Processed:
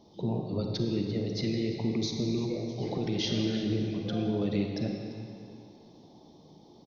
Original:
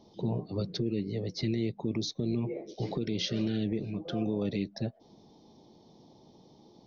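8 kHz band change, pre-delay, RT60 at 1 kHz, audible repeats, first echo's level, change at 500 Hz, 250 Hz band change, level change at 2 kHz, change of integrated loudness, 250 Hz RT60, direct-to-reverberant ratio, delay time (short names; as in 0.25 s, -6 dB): n/a, 34 ms, 2.5 s, 1, -15.0 dB, +2.0 dB, +2.0 dB, +2.0 dB, +2.0 dB, 2.5 s, 2.0 dB, 0.343 s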